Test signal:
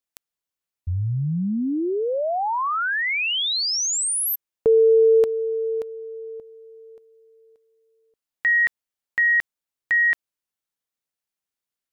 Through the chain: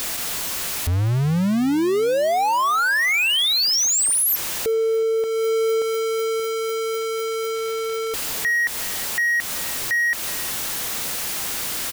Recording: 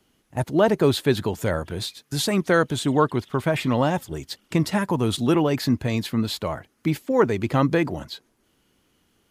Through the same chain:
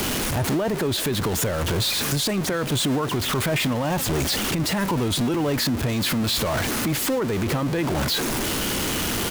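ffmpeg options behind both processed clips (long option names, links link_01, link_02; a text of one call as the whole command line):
ffmpeg -i in.wav -filter_complex "[0:a]aeval=exprs='val(0)+0.5*0.0891*sgn(val(0))':channel_layout=same,acompressor=threshold=-20dB:ratio=4:attack=54:release=553:knee=1:detection=peak,alimiter=limit=-19dB:level=0:latency=1:release=15,asplit=2[link_01][link_02];[link_02]adelay=369,lowpass=frequency=2000:poles=1,volume=-20dB,asplit=2[link_03][link_04];[link_04]adelay=369,lowpass=frequency=2000:poles=1,volume=0.36,asplit=2[link_05][link_06];[link_06]adelay=369,lowpass=frequency=2000:poles=1,volume=0.36[link_07];[link_03][link_05][link_07]amix=inputs=3:normalize=0[link_08];[link_01][link_08]amix=inputs=2:normalize=0,volume=2dB" out.wav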